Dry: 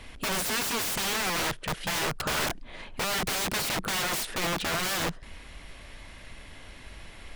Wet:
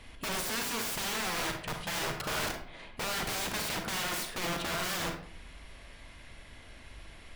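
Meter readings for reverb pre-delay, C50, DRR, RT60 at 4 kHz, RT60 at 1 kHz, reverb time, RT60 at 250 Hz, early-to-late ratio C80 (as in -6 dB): 34 ms, 6.0 dB, 4.0 dB, 0.35 s, 0.55 s, 0.55 s, 0.60 s, 10.0 dB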